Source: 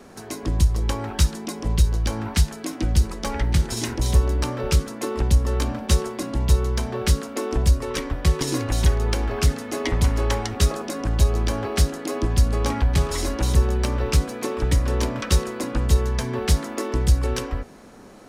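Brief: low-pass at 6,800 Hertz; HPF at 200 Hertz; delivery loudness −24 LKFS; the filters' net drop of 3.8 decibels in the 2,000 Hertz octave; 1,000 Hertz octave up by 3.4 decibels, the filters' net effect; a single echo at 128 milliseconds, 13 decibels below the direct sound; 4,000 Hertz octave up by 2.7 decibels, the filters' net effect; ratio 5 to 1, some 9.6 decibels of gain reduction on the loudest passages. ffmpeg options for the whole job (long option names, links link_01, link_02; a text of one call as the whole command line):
ffmpeg -i in.wav -af "highpass=200,lowpass=6800,equalizer=frequency=1000:width_type=o:gain=6,equalizer=frequency=2000:width_type=o:gain=-8.5,equalizer=frequency=4000:width_type=o:gain=6,acompressor=threshold=-32dB:ratio=5,aecho=1:1:128:0.224,volume=11dB" out.wav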